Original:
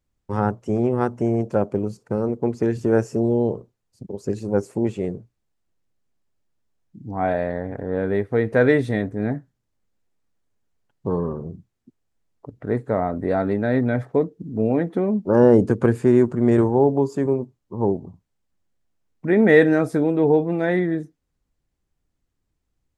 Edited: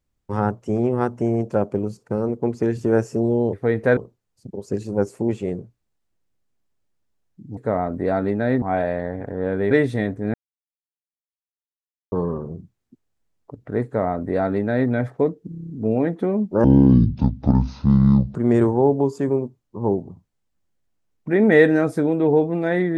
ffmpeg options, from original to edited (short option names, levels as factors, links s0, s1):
-filter_complex "[0:a]asplit=17[s0][s1][s2][s3][s4][s5][s6][s7][s8][s9][s10][s11][s12][s13][s14][s15][s16];[s0]atrim=end=3.532[s17];[s1]atrim=start=8.218:end=8.662[s18];[s2]atrim=start=3.528:end=7.132[s19];[s3]atrim=start=12.798:end=13.852[s20];[s4]atrim=start=7.128:end=8.222[s21];[s5]atrim=start=8.658:end=9.29,asetpts=PTS-STARTPTS,afade=t=out:st=0.628:d=0.004:c=hsin[s22];[s6]atrim=start=9.29:end=11.07,asetpts=PTS-STARTPTS,volume=0[s23];[s7]atrim=start=11.07:end=14.472,asetpts=PTS-STARTPTS,afade=t=in:d=0.004:c=hsin[s24];[s8]atrim=start=14.438:end=14.472[s25];[s9]atrim=start=14.438:end=14.472[s26];[s10]atrim=start=14.438:end=14.472[s27];[s11]atrim=start=14.438:end=14.472[s28];[s12]atrim=start=14.438:end=14.472[s29];[s13]atrim=start=14.438:end=14.472[s30];[s14]atrim=start=14.438:end=15.384[s31];[s15]atrim=start=15.38:end=16.32,asetpts=PTS-STARTPTS,asetrate=24255,aresample=44100[s32];[s16]atrim=start=16.316[s33];[s17][s18]acrossfade=d=0.004:c1=hsin:c2=hsin[s34];[s34][s19]acrossfade=d=0.004:c1=hsin:c2=hsin[s35];[s35][s20]acrossfade=d=0.004:c1=hsin:c2=hsin[s36];[s36][s21]acrossfade=d=0.004:c1=hsin:c2=hsin[s37];[s22][s23][s24]concat=n=3:v=0:a=1[s38];[s37][s38]acrossfade=d=0.004:c1=hsin:c2=hsin[s39];[s39][s25]acrossfade=d=0.004:c1=hsin:c2=hsin[s40];[s40][s26]acrossfade=d=0.004:c1=hsin:c2=hsin[s41];[s41][s27]acrossfade=d=0.004:c1=hsin:c2=hsin[s42];[s42][s28]acrossfade=d=0.004:c1=hsin:c2=hsin[s43];[s43][s29]acrossfade=d=0.004:c1=hsin:c2=hsin[s44];[s44][s30]acrossfade=d=0.004:c1=hsin:c2=hsin[s45];[s45][s31]acrossfade=d=0.004:c1=hsin:c2=hsin[s46];[s46][s32]acrossfade=d=0.004:c1=hsin:c2=hsin[s47];[s47][s33]acrossfade=d=0.004:c1=hsin:c2=hsin"